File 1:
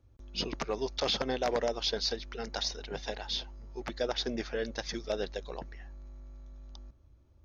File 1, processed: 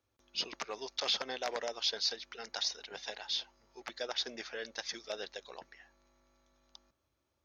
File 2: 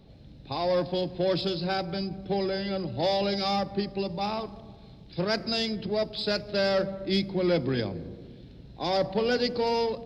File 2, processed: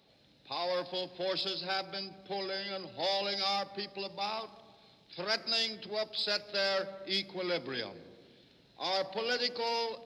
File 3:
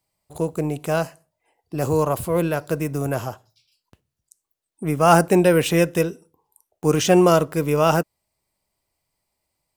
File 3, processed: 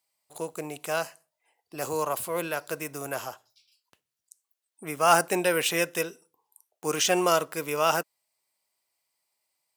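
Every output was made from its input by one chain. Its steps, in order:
HPF 1300 Hz 6 dB/oct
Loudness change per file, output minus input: -2.5, -5.5, -7.0 LU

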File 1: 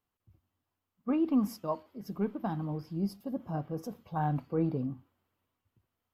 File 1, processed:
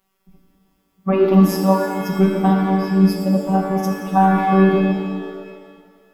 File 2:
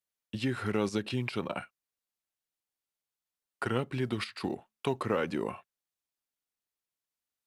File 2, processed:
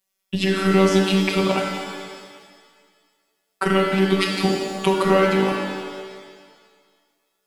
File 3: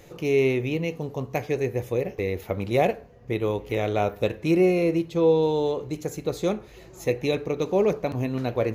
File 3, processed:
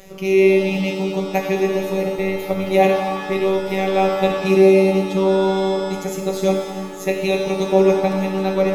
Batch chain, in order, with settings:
robotiser 192 Hz; shimmer reverb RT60 1.8 s, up +7 st, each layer -8 dB, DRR 2 dB; normalise peaks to -1.5 dBFS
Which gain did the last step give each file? +18.5, +14.5, +8.0 dB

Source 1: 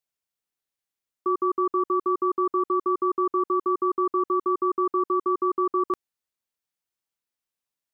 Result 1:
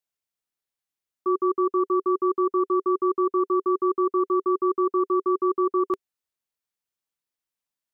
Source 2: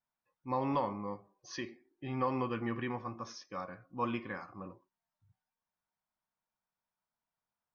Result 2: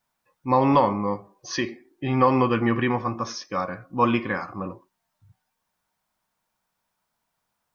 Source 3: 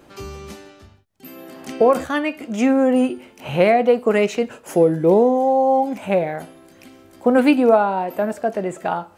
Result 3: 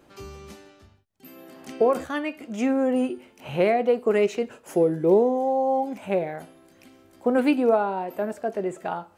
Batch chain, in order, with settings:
dynamic EQ 390 Hz, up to +7 dB, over -34 dBFS, Q 4.5; match loudness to -24 LUFS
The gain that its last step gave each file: -1.5, +14.0, -7.0 dB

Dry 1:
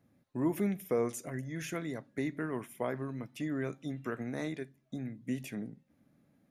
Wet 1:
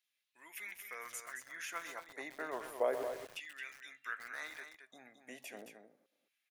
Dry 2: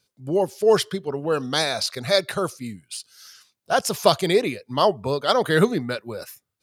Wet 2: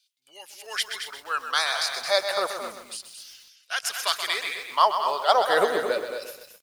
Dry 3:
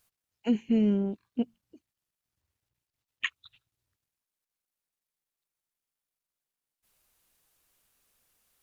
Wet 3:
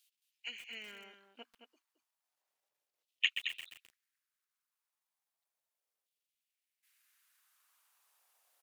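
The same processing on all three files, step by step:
LFO high-pass saw down 0.33 Hz 470–3200 Hz; echo 0.22 s -8.5 dB; lo-fi delay 0.128 s, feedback 55%, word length 7-bit, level -8.5 dB; gain -3 dB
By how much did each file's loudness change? -6.0, -3.0, -8.5 LU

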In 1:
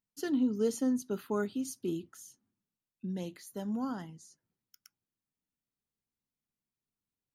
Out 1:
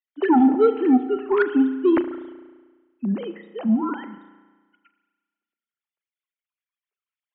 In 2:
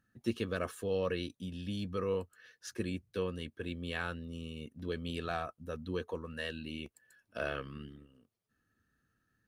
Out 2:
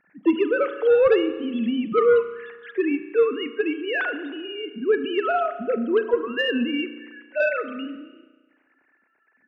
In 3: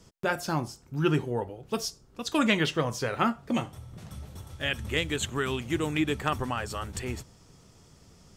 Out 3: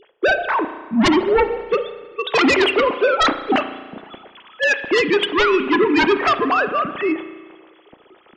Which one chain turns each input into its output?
sine-wave speech; sine folder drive 14 dB, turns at -10.5 dBFS; spring tank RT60 1.4 s, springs 34 ms, chirp 45 ms, DRR 10 dB; gain -1 dB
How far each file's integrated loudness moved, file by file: +14.0, +15.5, +12.0 LU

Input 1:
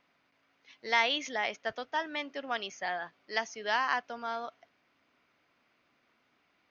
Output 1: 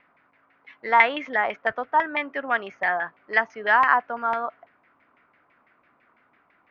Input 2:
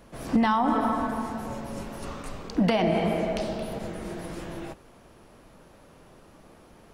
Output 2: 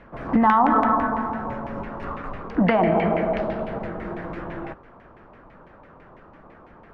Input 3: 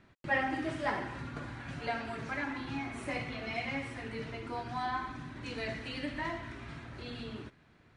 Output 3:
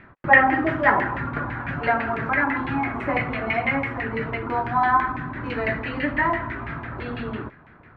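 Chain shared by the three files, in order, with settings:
LFO low-pass saw down 6 Hz 950–2200 Hz; match loudness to -23 LUFS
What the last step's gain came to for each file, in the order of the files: +7.0, +3.0, +11.5 dB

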